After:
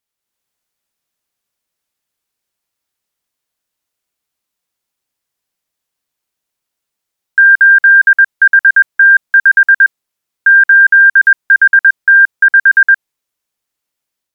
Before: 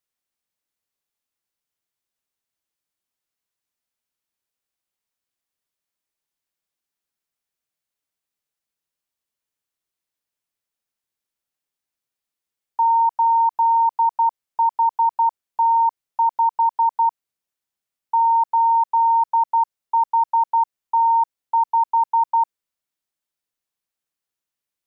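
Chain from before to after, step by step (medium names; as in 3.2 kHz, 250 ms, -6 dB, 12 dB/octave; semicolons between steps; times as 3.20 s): level rider gain up to 5 dB; speed mistake 45 rpm record played at 78 rpm; trim +6 dB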